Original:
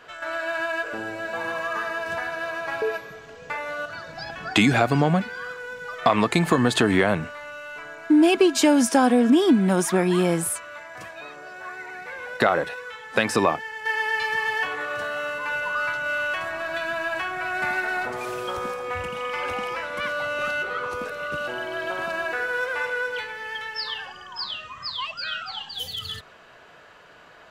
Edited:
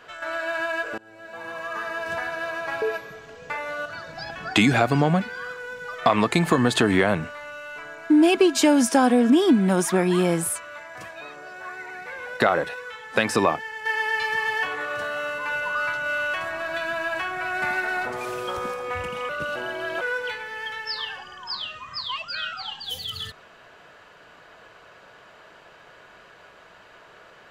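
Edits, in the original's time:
0.98–2.12 fade in, from -24 dB
19.29–21.21 cut
21.93–22.9 cut

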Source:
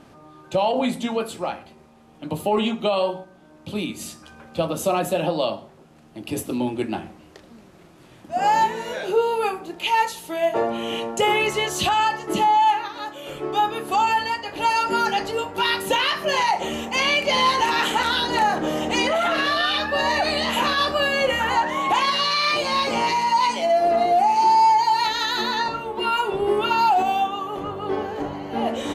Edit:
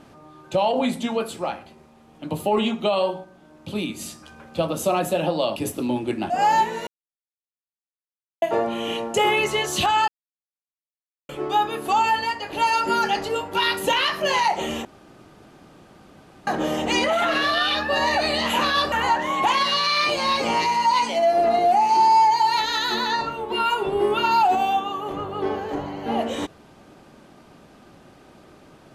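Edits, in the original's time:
5.56–6.27 cut
7.01–8.33 cut
8.9–10.45 mute
12.11–13.32 mute
16.88–18.5 room tone
20.95–21.39 cut

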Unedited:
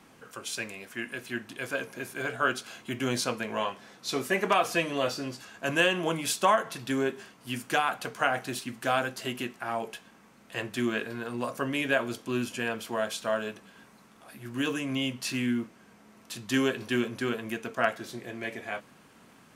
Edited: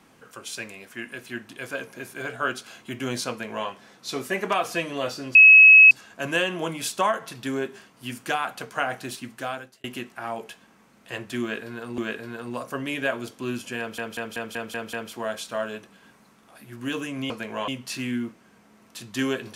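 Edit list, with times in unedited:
3.3–3.68 copy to 15.03
5.35 add tone 2570 Hz -7 dBFS 0.56 s
8.68–9.28 fade out
10.85–11.42 loop, 2 plays
12.66 stutter 0.19 s, 7 plays

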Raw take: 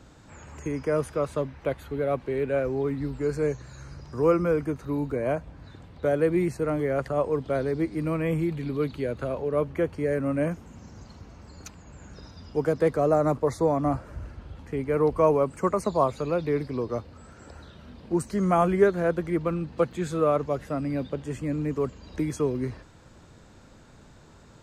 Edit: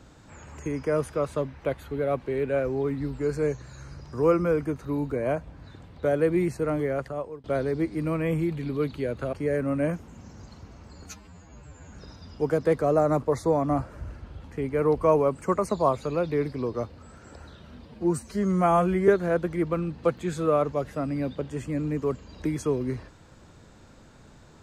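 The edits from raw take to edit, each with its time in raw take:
6.81–7.44 fade out, to -23.5 dB
9.33–9.91 cut
11.64–12.07 stretch 2×
18–18.82 stretch 1.5×

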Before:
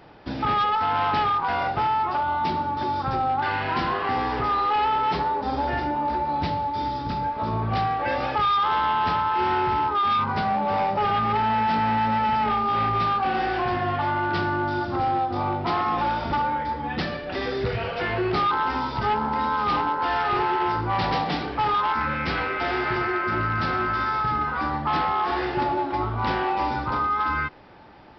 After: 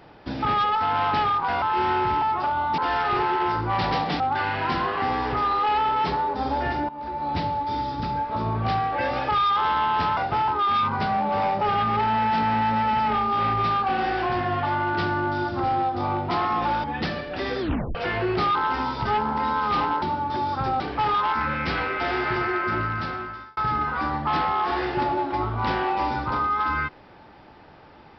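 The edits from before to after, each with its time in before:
1.62–1.93 swap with 9.24–9.84
2.49–3.27 swap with 19.98–21.4
5.96–6.46 fade in, from -16.5 dB
16.2–16.8 cut
17.56 tape stop 0.35 s
23.31–24.17 fade out linear

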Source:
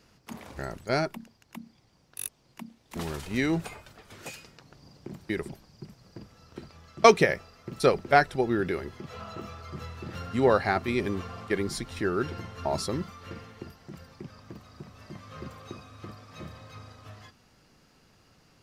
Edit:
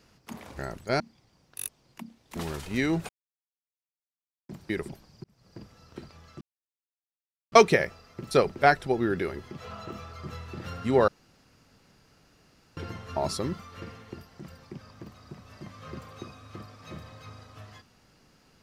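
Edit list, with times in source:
1–1.6 cut
3.69–5.09 mute
5.84–6.2 fade in
7.01 insert silence 1.11 s
10.57–12.26 room tone

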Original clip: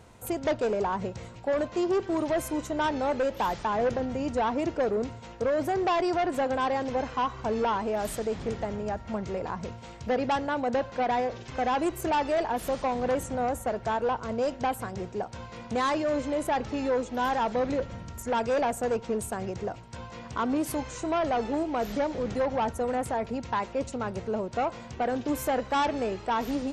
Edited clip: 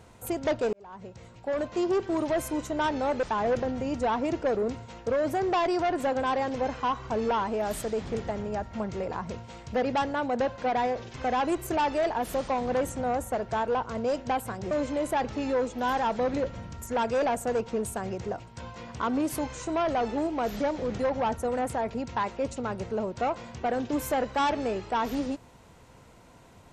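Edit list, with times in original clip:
0.73–1.81 fade in
3.23–3.57 cut
15.05–16.07 cut

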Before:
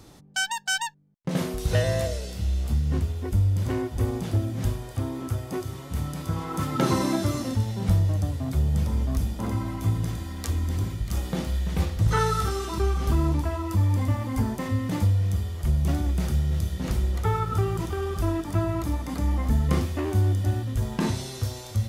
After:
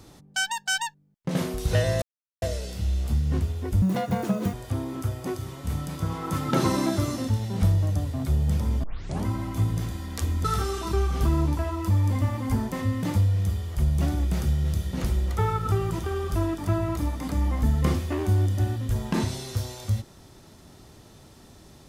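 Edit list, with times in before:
2.02 insert silence 0.40 s
3.42–4.8 speed 193%
9.1 tape start 0.42 s
10.71–12.31 cut

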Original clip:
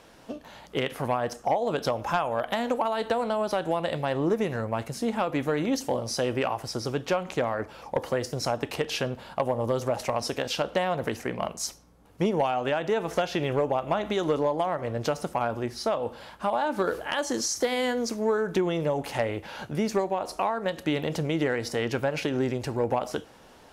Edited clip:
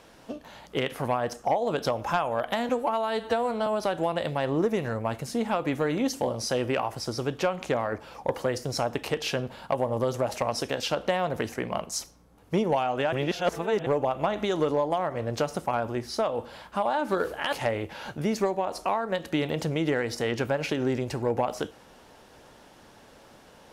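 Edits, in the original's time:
2.69–3.34 stretch 1.5×
12.8–13.54 reverse
17.2–19.06 cut

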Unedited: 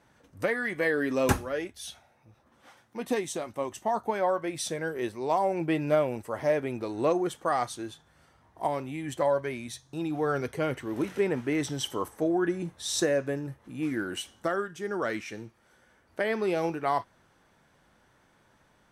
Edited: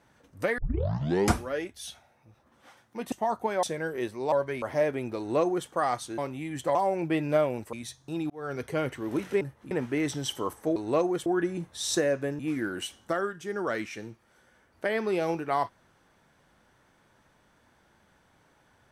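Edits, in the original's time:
0.58 tape start 0.84 s
3.12–3.76 cut
4.27–4.64 cut
5.33–6.31 swap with 9.28–9.58
6.87–7.37 copy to 12.31
7.87–8.71 cut
10.15–10.52 fade in
13.44–13.74 move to 11.26

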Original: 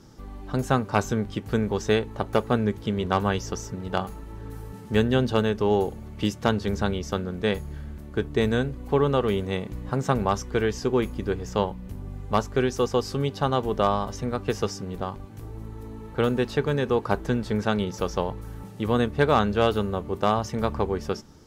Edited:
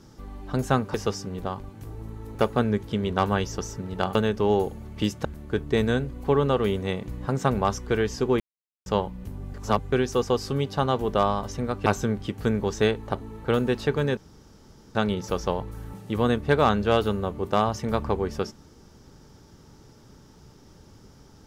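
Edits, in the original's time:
0.94–2.29 swap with 14.5–15.91
4.09–5.36 cut
6.46–7.89 cut
11.04–11.5 mute
12.18–12.56 reverse
16.87–17.65 room tone

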